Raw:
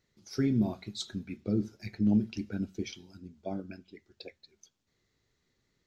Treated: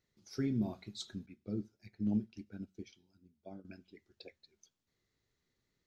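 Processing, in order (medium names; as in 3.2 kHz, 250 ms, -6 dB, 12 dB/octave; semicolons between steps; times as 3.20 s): 1.26–3.65 s: upward expansion 1.5:1, over -45 dBFS; trim -6.5 dB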